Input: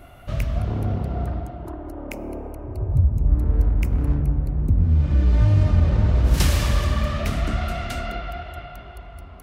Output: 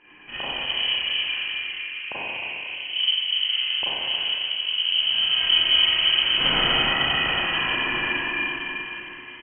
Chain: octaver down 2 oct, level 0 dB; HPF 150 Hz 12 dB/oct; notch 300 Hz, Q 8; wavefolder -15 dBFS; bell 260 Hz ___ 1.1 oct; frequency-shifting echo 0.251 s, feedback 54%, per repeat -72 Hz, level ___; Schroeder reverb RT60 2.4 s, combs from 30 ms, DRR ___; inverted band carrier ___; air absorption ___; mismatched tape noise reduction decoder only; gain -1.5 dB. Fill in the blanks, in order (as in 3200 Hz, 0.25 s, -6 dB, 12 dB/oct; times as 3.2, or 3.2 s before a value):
-6.5 dB, -21 dB, -10 dB, 3100 Hz, 210 m